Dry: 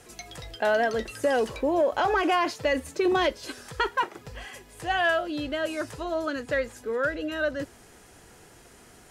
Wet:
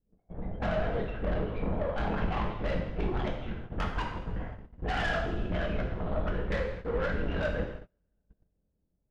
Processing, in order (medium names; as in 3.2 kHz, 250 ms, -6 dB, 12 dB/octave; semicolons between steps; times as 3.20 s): median filter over 9 samples; LPC vocoder at 8 kHz whisper; level-controlled noise filter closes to 400 Hz, open at -25 dBFS; bass shelf 230 Hz +12 dB; compression 3:1, threshold -23 dBFS, peak gain reduction 9.5 dB; saturation -26.5 dBFS, distortion -9 dB; two-slope reverb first 0.83 s, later 2.7 s, DRR 1 dB; gate -37 dBFS, range -31 dB; trim -1.5 dB